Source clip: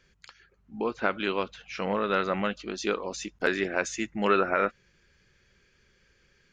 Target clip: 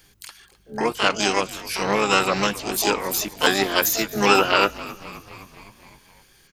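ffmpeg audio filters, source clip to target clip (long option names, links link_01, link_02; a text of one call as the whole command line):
ffmpeg -i in.wav -filter_complex "[0:a]asplit=3[link_01][link_02][link_03];[link_02]asetrate=29433,aresample=44100,atempo=1.49831,volume=-11dB[link_04];[link_03]asetrate=88200,aresample=44100,atempo=0.5,volume=-3dB[link_05];[link_01][link_04][link_05]amix=inputs=3:normalize=0,aemphasis=mode=production:type=50kf,asplit=7[link_06][link_07][link_08][link_09][link_10][link_11][link_12];[link_07]adelay=259,afreqshift=-73,volume=-18.5dB[link_13];[link_08]adelay=518,afreqshift=-146,volume=-22.2dB[link_14];[link_09]adelay=777,afreqshift=-219,volume=-26dB[link_15];[link_10]adelay=1036,afreqshift=-292,volume=-29.7dB[link_16];[link_11]adelay=1295,afreqshift=-365,volume=-33.5dB[link_17];[link_12]adelay=1554,afreqshift=-438,volume=-37.2dB[link_18];[link_06][link_13][link_14][link_15][link_16][link_17][link_18]amix=inputs=7:normalize=0,volume=4.5dB" out.wav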